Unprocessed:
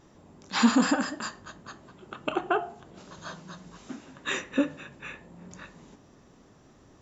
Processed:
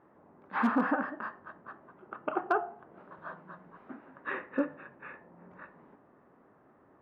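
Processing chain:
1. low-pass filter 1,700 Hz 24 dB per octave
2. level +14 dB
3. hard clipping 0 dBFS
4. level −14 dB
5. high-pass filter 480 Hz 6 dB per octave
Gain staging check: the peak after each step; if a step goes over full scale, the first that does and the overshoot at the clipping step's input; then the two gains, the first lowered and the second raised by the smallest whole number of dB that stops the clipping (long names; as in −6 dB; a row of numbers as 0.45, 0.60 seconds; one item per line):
−8.5, +5.5, 0.0, −14.0, −13.5 dBFS
step 2, 5.5 dB
step 2 +8 dB, step 4 −8 dB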